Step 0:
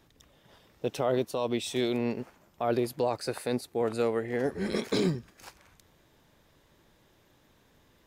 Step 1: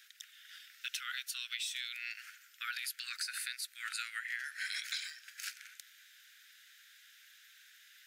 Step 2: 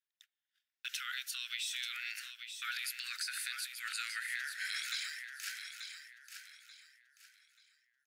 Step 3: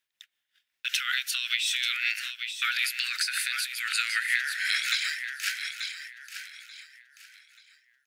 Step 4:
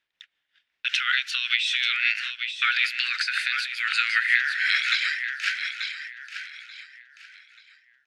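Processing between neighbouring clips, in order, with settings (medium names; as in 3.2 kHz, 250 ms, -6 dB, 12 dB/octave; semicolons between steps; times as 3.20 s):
steep high-pass 1.4 kHz 96 dB/octave; compression 16:1, threshold -45 dBFS, peak gain reduction 14.5 dB; trim +9.5 dB
transient shaper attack -1 dB, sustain +5 dB; gate -48 dBFS, range -38 dB; feedback delay 885 ms, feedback 30%, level -8 dB
peaking EQ 2.5 kHz +6.5 dB 1.5 oct; tremolo 5.3 Hz, depth 42%; trim +9 dB
low-pass 3.5 kHz 12 dB/octave; trim +6 dB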